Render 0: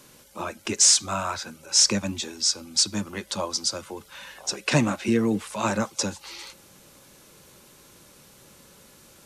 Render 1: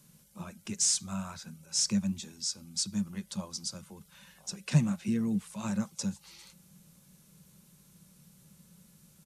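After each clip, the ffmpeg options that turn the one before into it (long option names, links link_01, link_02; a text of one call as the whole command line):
ffmpeg -i in.wav -af "firequalizer=gain_entry='entry(120,0);entry(170,13);entry(280,-10);entry(9600,0)':delay=0.05:min_phase=1,volume=-7dB" out.wav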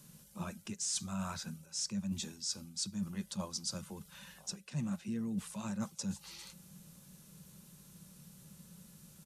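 ffmpeg -i in.wav -af "bandreject=frequency=2200:width=19,areverse,acompressor=threshold=-37dB:ratio=10,areverse,volume=2.5dB" out.wav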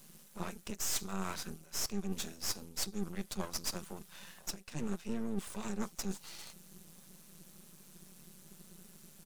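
ffmpeg -i in.wav -af "highpass=frequency=170:width=0.5412,highpass=frequency=170:width=1.3066,aeval=exprs='max(val(0),0)':channel_layout=same,volume=5.5dB" out.wav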